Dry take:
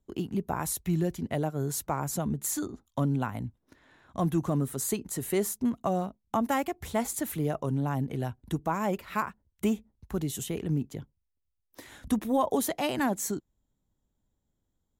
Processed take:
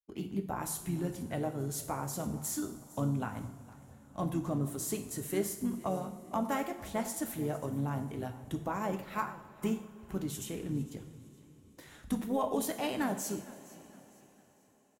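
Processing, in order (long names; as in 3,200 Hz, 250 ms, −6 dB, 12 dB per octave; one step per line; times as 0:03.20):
downward expander −53 dBFS
pitch-shifted copies added −4 semitones −10 dB
on a send: echo with shifted repeats 458 ms, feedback 35%, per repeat −31 Hz, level −20 dB
on the sum: coupled-rooms reverb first 0.59 s, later 4.8 s, from −18 dB, DRR 5.5 dB
level −6.5 dB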